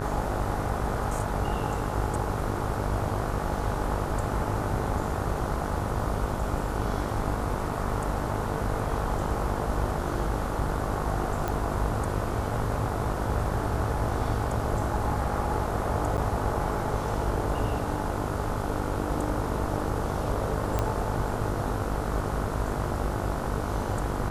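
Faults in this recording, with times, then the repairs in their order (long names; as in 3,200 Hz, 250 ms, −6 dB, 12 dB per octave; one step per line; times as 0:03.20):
mains buzz 50 Hz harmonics 30 −33 dBFS
0:11.48: click
0:16.17–0:16.18: drop-out 9 ms
0:20.79: click −13 dBFS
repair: click removal
hum removal 50 Hz, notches 30
repair the gap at 0:16.17, 9 ms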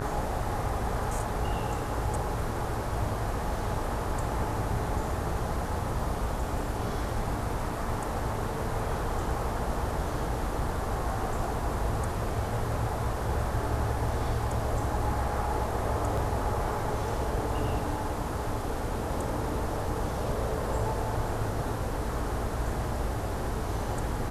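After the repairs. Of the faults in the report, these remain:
none of them is left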